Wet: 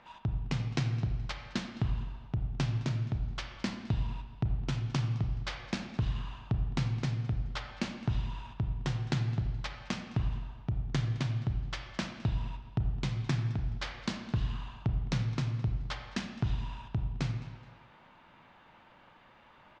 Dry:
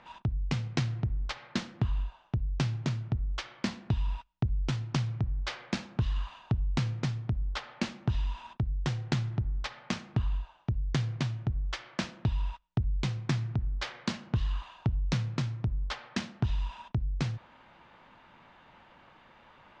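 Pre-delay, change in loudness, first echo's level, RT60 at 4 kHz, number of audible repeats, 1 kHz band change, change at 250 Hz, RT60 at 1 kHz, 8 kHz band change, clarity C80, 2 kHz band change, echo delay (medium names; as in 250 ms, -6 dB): 29 ms, -1.5 dB, -19.5 dB, 1.3 s, 1, -1.5 dB, -1.5 dB, 1.4 s, no reading, 8.5 dB, -1.5 dB, 212 ms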